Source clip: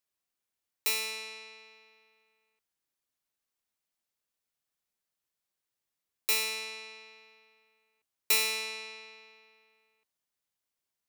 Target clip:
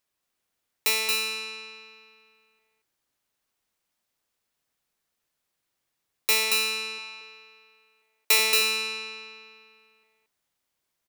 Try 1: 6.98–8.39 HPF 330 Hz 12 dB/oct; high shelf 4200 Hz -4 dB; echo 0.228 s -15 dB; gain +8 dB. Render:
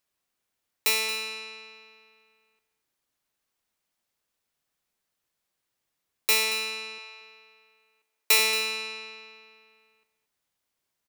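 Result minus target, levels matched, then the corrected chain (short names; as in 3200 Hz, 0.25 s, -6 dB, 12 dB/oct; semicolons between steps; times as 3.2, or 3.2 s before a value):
echo-to-direct -11.5 dB
6.98–8.39 HPF 330 Hz 12 dB/oct; high shelf 4200 Hz -4 dB; echo 0.228 s -3.5 dB; gain +8 dB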